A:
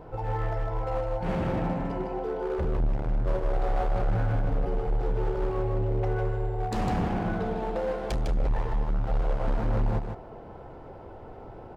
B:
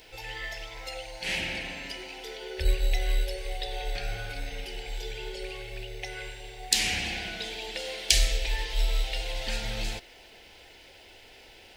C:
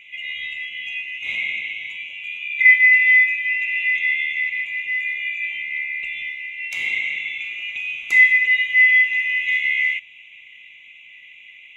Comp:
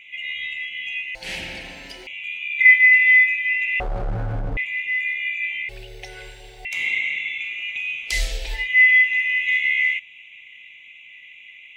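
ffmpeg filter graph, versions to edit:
-filter_complex "[1:a]asplit=3[a][b][c];[2:a]asplit=5[d][e][f][g][h];[d]atrim=end=1.152[i];[a]atrim=start=1.148:end=2.072[j];[e]atrim=start=2.068:end=3.802[k];[0:a]atrim=start=3.798:end=4.572[l];[f]atrim=start=4.568:end=5.692[m];[b]atrim=start=5.688:end=6.652[n];[g]atrim=start=6.648:end=8.21[o];[c]atrim=start=8.05:end=8.69[p];[h]atrim=start=8.53[q];[i][j]acrossfade=d=0.004:c1=hsin:c2=hsin[r];[r][k]acrossfade=d=0.004:c1=hsin:c2=hsin[s];[s][l]acrossfade=d=0.004:c1=hsin:c2=hsin[t];[t][m]acrossfade=d=0.004:c1=hsin:c2=hsin[u];[u][n]acrossfade=d=0.004:c1=hsin:c2=hsin[v];[v][o]acrossfade=d=0.004:c1=hsin:c2=hsin[w];[w][p]acrossfade=d=0.16:c1=tri:c2=tri[x];[x][q]acrossfade=d=0.16:c1=tri:c2=tri"

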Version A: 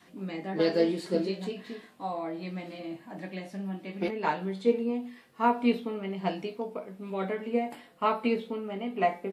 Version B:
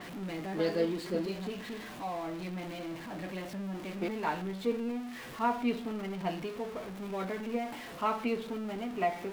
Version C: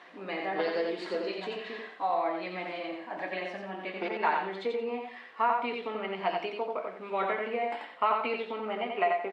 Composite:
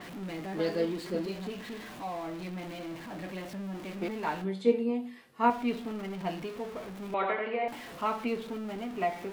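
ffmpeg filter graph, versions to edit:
-filter_complex "[1:a]asplit=3[a][b][c];[a]atrim=end=4.442[d];[0:a]atrim=start=4.438:end=5.502[e];[b]atrim=start=5.498:end=7.142[f];[2:a]atrim=start=7.138:end=7.682[g];[c]atrim=start=7.678[h];[d][e]acrossfade=d=0.004:c1=hsin:c2=hsin[i];[i][f]acrossfade=d=0.004:c1=hsin:c2=hsin[j];[j][g]acrossfade=d=0.004:c1=hsin:c2=hsin[k];[k][h]acrossfade=d=0.004:c1=hsin:c2=hsin"

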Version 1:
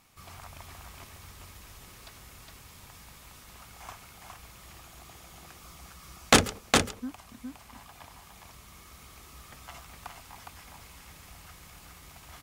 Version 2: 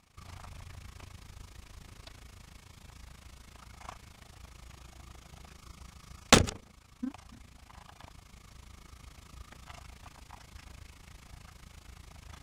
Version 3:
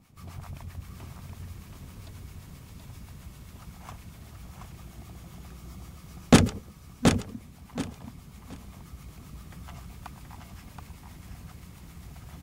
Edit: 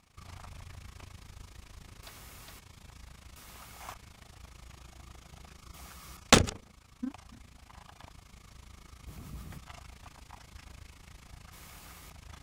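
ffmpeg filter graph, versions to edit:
-filter_complex "[0:a]asplit=4[a][b][c][d];[1:a]asplit=6[e][f][g][h][i][j];[e]atrim=end=2.032[k];[a]atrim=start=2.028:end=2.592[l];[f]atrim=start=2.588:end=3.362[m];[b]atrim=start=3.358:end=3.942[n];[g]atrim=start=3.938:end=5.742[o];[c]atrim=start=5.738:end=6.172[p];[h]atrim=start=6.168:end=9.072[q];[2:a]atrim=start=9.068:end=9.582[r];[i]atrim=start=9.578:end=11.532[s];[d]atrim=start=11.528:end=12.102[t];[j]atrim=start=12.098[u];[k][l]acrossfade=d=0.004:c1=hsin:c2=hsin[v];[v][m]acrossfade=d=0.004:c1=hsin:c2=hsin[w];[w][n]acrossfade=d=0.004:c1=hsin:c2=hsin[x];[x][o]acrossfade=d=0.004:c1=hsin:c2=hsin[y];[y][p]acrossfade=d=0.004:c1=hsin:c2=hsin[z];[z][q]acrossfade=d=0.004:c1=hsin:c2=hsin[aa];[aa][r]acrossfade=d=0.004:c1=hsin:c2=hsin[ab];[ab][s]acrossfade=d=0.004:c1=hsin:c2=hsin[ac];[ac][t]acrossfade=d=0.004:c1=hsin:c2=hsin[ad];[ad][u]acrossfade=d=0.004:c1=hsin:c2=hsin"

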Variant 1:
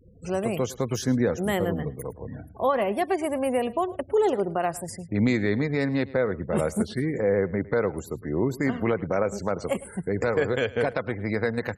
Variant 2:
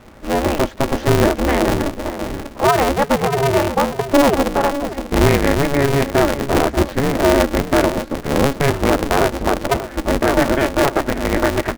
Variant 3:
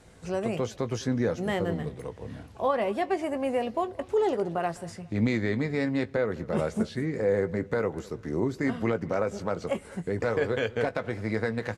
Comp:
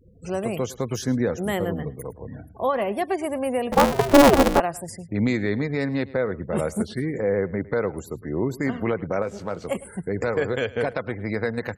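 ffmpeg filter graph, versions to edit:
-filter_complex "[0:a]asplit=3[a][b][c];[a]atrim=end=3.722[d];[1:a]atrim=start=3.718:end=4.602[e];[b]atrim=start=4.598:end=9.222[f];[2:a]atrim=start=9.218:end=9.672[g];[c]atrim=start=9.668[h];[d][e]acrossfade=d=0.004:c1=hsin:c2=hsin[i];[i][f]acrossfade=d=0.004:c1=hsin:c2=hsin[j];[j][g]acrossfade=d=0.004:c1=hsin:c2=hsin[k];[k][h]acrossfade=d=0.004:c1=hsin:c2=hsin"

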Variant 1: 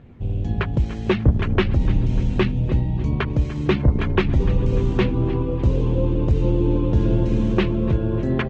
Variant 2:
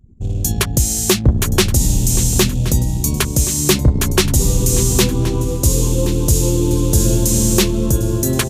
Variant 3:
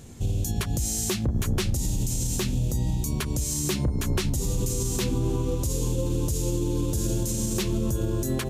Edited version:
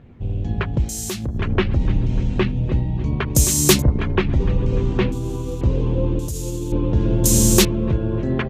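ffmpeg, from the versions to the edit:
-filter_complex "[2:a]asplit=3[a][b][c];[1:a]asplit=2[d][e];[0:a]asplit=6[f][g][h][i][j][k];[f]atrim=end=0.892[l];[a]atrim=start=0.888:end=1.382[m];[g]atrim=start=1.378:end=3.352[n];[d]atrim=start=3.348:end=3.822[o];[h]atrim=start=3.818:end=5.122[p];[b]atrim=start=5.118:end=5.612[q];[i]atrim=start=5.608:end=6.192[r];[c]atrim=start=6.188:end=6.722[s];[j]atrim=start=6.718:end=7.242[t];[e]atrim=start=7.238:end=7.652[u];[k]atrim=start=7.648[v];[l][m]acrossfade=d=0.004:c1=hsin:c2=hsin[w];[w][n]acrossfade=d=0.004:c1=hsin:c2=hsin[x];[x][o]acrossfade=d=0.004:c1=hsin:c2=hsin[y];[y][p]acrossfade=d=0.004:c1=hsin:c2=hsin[z];[z][q]acrossfade=d=0.004:c1=hsin:c2=hsin[aa];[aa][r]acrossfade=d=0.004:c1=hsin:c2=hsin[ab];[ab][s]acrossfade=d=0.004:c1=hsin:c2=hsin[ac];[ac][t]acrossfade=d=0.004:c1=hsin:c2=hsin[ad];[ad][u]acrossfade=d=0.004:c1=hsin:c2=hsin[ae];[ae][v]acrossfade=d=0.004:c1=hsin:c2=hsin"

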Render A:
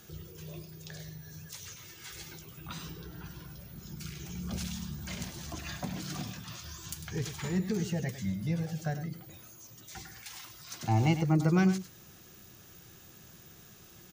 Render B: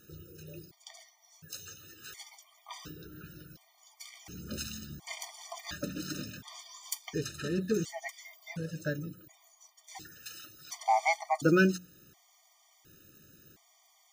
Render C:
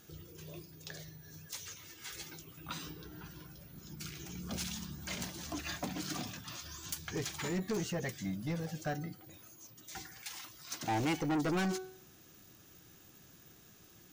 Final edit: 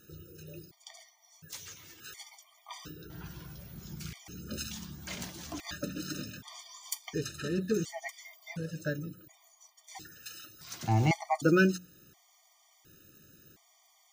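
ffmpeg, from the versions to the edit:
-filter_complex "[2:a]asplit=2[a][b];[0:a]asplit=2[c][d];[1:a]asplit=5[e][f][g][h][i];[e]atrim=end=1.502[j];[a]atrim=start=1.498:end=2.002[k];[f]atrim=start=1.998:end=3.102[l];[c]atrim=start=3.098:end=4.132[m];[g]atrim=start=4.128:end=4.712[n];[b]atrim=start=4.708:end=5.602[o];[h]atrim=start=5.598:end=10.612[p];[d]atrim=start=10.608:end=11.112[q];[i]atrim=start=11.108[r];[j][k]acrossfade=d=0.004:c1=hsin:c2=hsin[s];[s][l]acrossfade=d=0.004:c1=hsin:c2=hsin[t];[t][m]acrossfade=d=0.004:c1=hsin:c2=hsin[u];[u][n]acrossfade=d=0.004:c1=hsin:c2=hsin[v];[v][o]acrossfade=d=0.004:c1=hsin:c2=hsin[w];[w][p]acrossfade=d=0.004:c1=hsin:c2=hsin[x];[x][q]acrossfade=d=0.004:c1=hsin:c2=hsin[y];[y][r]acrossfade=d=0.004:c1=hsin:c2=hsin"

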